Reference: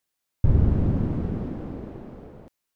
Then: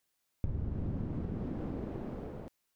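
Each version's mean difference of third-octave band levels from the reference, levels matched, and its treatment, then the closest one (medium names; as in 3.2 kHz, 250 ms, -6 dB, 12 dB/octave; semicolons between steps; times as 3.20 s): 5.5 dB: compression 5:1, threshold -35 dBFS, peak gain reduction 19.5 dB; trim +1 dB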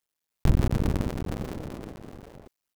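8.0 dB: cycle switcher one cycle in 2, muted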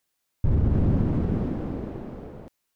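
2.0 dB: peak limiter -17.5 dBFS, peak gain reduction 9.5 dB; trim +3.5 dB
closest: third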